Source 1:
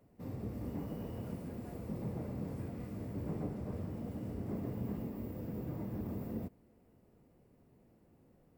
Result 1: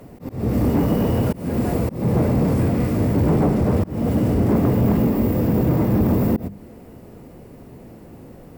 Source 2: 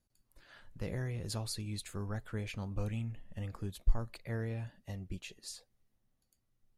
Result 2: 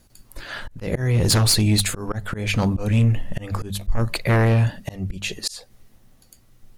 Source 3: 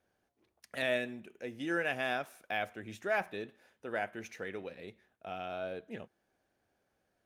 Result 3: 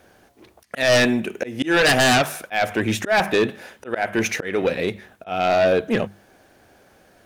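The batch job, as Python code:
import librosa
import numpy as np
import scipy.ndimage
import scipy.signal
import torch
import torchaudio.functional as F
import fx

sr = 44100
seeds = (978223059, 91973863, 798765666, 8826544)

y = fx.hum_notches(x, sr, base_hz=50, count=4)
y = fx.auto_swell(y, sr, attack_ms=264.0)
y = fx.fold_sine(y, sr, drive_db=13, ceiling_db=-20.0)
y = F.gain(torch.from_numpy(y), 8.0).numpy()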